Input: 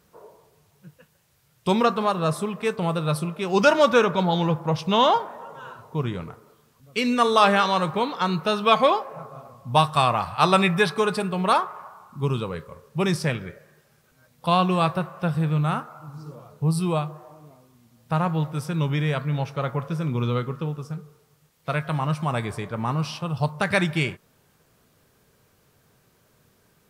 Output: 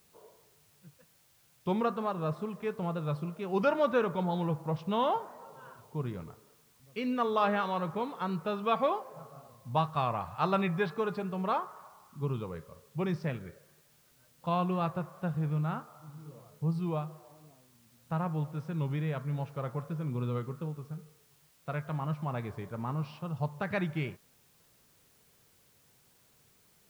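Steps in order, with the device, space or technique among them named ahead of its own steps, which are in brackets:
cassette deck with a dirty head (head-to-tape spacing loss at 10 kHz 28 dB; tape wow and flutter; white noise bed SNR 32 dB)
level −8 dB

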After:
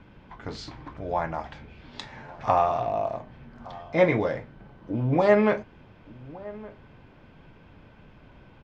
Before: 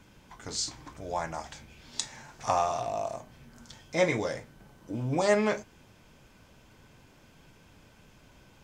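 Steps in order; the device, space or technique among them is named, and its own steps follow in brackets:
shout across a valley (high-frequency loss of the air 370 metres; slap from a distant wall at 200 metres, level −19 dB)
level +6.5 dB

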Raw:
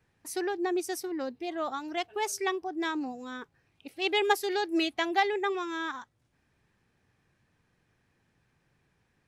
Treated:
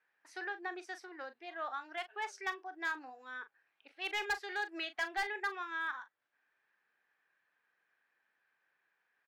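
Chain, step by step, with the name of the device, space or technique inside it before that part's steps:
megaphone (band-pass filter 680–3,500 Hz; parametric band 1,600 Hz +8.5 dB 0.54 octaves; hard clipping −22 dBFS, distortion −10 dB; double-tracking delay 39 ms −12 dB)
level −7 dB

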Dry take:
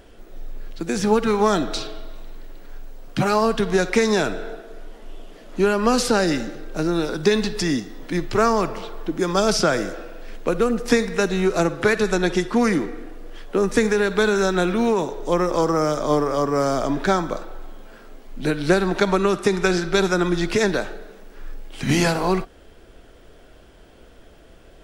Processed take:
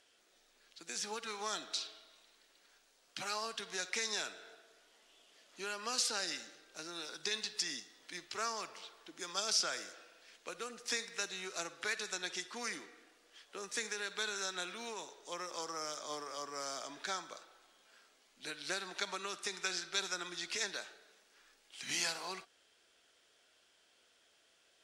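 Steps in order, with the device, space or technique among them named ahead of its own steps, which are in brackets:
piezo pickup straight into a mixer (low-pass filter 6,500 Hz 12 dB per octave; first difference)
level −3 dB

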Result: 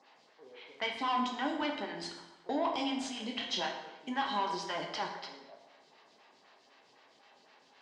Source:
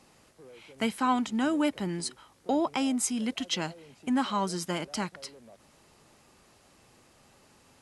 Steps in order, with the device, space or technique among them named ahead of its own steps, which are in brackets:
high-pass filter 960 Hz 6 dB per octave
high-shelf EQ 9,700 Hz +6 dB
0:02.64–0:04.36: double-tracking delay 27 ms −7 dB
vibe pedal into a guitar amplifier (phaser with staggered stages 3.9 Hz; tube saturation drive 32 dB, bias 0.25; loudspeaker in its box 81–4,500 Hz, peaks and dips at 100 Hz −8 dB, 190 Hz −5 dB, 320 Hz −3 dB, 530 Hz −4 dB, 1,300 Hz −8 dB, 2,500 Hz −5 dB)
dense smooth reverb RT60 1 s, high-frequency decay 0.75×, DRR 1.5 dB
level +6.5 dB

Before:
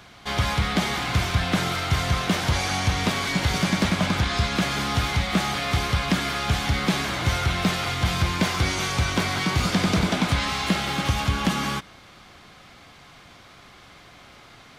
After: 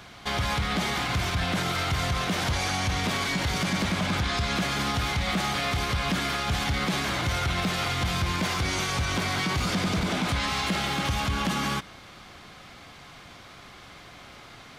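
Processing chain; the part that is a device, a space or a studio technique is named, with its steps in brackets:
soft clipper into limiter (soft clipping −11.5 dBFS, distortion −23 dB; brickwall limiter −20.5 dBFS, peak gain reduction 7.5 dB)
level +1.5 dB

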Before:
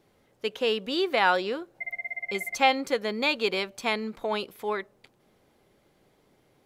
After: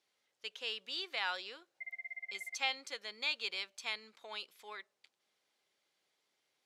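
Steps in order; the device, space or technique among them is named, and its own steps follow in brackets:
piezo pickup straight into a mixer (low-pass filter 5,300 Hz 12 dB per octave; first difference)

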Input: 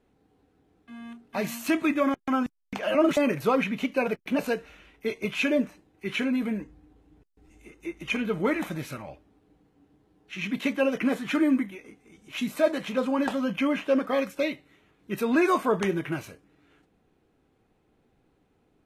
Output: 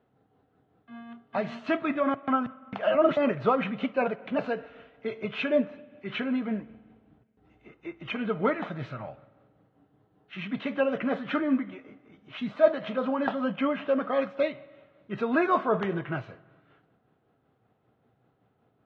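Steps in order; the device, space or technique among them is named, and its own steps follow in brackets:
combo amplifier with spring reverb and tremolo (spring reverb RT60 1.5 s, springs 45/54 ms, chirp 25 ms, DRR 18 dB; amplitude tremolo 5.2 Hz, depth 37%; loudspeaker in its box 97–3,500 Hz, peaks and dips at 120 Hz +9 dB, 320 Hz −5 dB, 670 Hz +6 dB, 1,300 Hz +5 dB, 2,400 Hz −6 dB)

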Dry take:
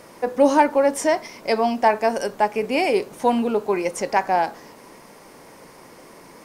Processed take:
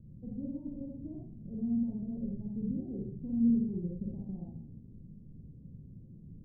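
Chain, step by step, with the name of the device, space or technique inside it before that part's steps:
club heard from the street (brickwall limiter −15 dBFS, peak gain reduction 11 dB; low-pass filter 160 Hz 24 dB per octave; convolution reverb RT60 0.50 s, pre-delay 41 ms, DRR −3.5 dB)
level +6.5 dB

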